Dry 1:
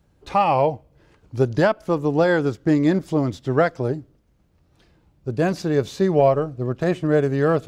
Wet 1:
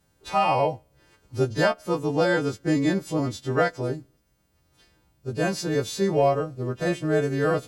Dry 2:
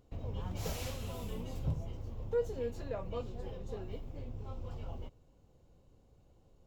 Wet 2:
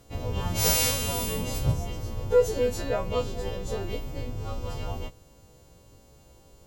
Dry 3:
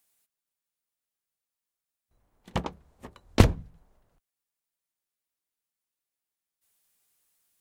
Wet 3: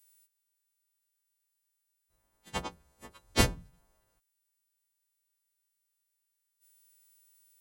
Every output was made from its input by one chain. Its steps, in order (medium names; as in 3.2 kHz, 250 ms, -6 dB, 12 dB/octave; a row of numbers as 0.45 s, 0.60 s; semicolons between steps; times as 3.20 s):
partials quantised in pitch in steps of 2 st; peak normalisation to -9 dBFS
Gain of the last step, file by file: -4.0 dB, +12.5 dB, -4.5 dB